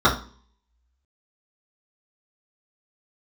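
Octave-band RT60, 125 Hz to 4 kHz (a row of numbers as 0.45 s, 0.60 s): 0.50 s, 0.55 s, 0.45 s, 0.40 s, 0.35 s, 0.40 s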